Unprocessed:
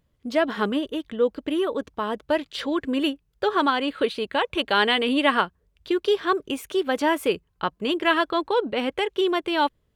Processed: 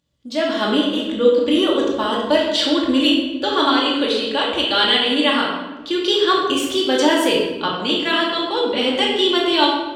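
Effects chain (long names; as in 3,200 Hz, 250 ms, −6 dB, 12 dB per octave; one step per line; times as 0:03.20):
high-pass filter 73 Hz
flat-topped bell 5,000 Hz +10 dB
automatic gain control gain up to 11.5 dB
convolution reverb RT60 1.2 s, pre-delay 3 ms, DRR −4 dB
level −7 dB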